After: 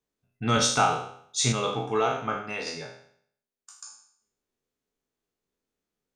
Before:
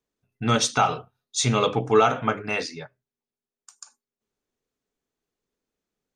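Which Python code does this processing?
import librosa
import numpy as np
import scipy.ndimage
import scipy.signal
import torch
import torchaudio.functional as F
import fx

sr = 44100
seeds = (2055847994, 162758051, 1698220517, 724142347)

y = fx.spec_trails(x, sr, decay_s=0.62)
y = fx.comb_fb(y, sr, f0_hz=67.0, decay_s=0.34, harmonics='all', damping=0.0, mix_pct=60, at=(1.52, 2.67))
y = y * 10.0 ** (-3.5 / 20.0)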